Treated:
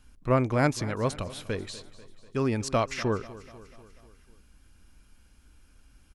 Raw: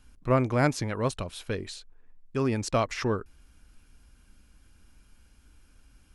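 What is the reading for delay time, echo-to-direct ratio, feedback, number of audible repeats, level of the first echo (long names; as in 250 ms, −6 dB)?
245 ms, −16.0 dB, 58%, 4, −18.0 dB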